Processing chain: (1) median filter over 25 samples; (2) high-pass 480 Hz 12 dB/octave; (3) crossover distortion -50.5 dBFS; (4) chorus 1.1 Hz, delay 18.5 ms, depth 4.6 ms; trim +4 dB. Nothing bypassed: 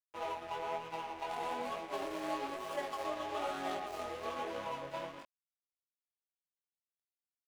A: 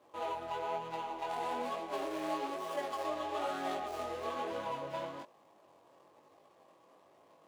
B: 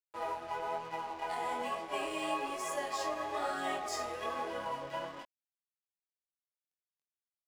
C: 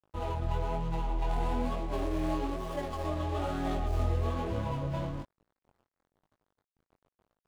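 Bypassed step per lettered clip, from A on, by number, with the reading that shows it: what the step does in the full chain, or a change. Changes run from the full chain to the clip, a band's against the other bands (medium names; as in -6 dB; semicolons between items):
3, distortion -15 dB; 1, 8 kHz band +6.5 dB; 2, 125 Hz band +25.0 dB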